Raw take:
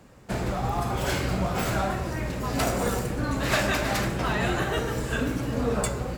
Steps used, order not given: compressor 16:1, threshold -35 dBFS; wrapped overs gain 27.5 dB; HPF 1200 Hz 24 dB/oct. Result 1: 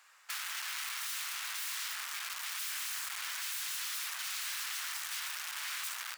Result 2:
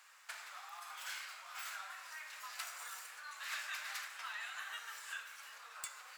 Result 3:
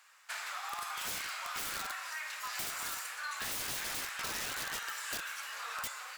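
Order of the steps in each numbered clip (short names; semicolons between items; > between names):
wrapped overs > compressor > HPF; compressor > HPF > wrapped overs; HPF > wrapped overs > compressor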